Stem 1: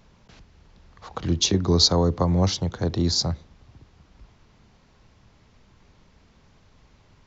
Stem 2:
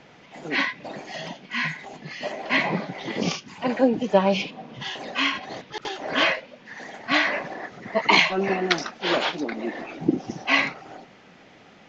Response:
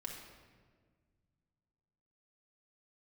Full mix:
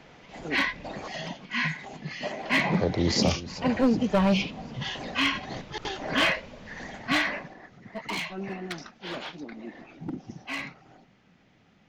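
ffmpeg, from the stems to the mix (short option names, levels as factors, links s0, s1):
-filter_complex "[0:a]equalizer=f=570:w=1.2:g=11.5,dynaudnorm=f=110:g=9:m=5.62,volume=0.335,asplit=3[s0][s1][s2];[s0]atrim=end=1.08,asetpts=PTS-STARTPTS,afade=t=out:st=1.076:d=0.004:c=hsin[s3];[s1]atrim=start=1.08:end=2.71,asetpts=PTS-STARTPTS,volume=0[s4];[s2]atrim=start=2.71,asetpts=PTS-STARTPTS,afade=t=in:d=0.004:c=hsin[s5];[s3][s4][s5]concat=n=3:v=0:a=1,asplit=2[s6][s7];[s7]volume=0.178[s8];[1:a]asubboost=boost=3:cutoff=230,volume=5.62,asoftclip=hard,volume=0.178,volume=0.841,afade=t=out:st=7.07:d=0.47:silence=0.281838[s9];[s8]aecho=0:1:374|748|1122|1496|1870|2244|2618:1|0.49|0.24|0.118|0.0576|0.0282|0.0138[s10];[s6][s9][s10]amix=inputs=3:normalize=0"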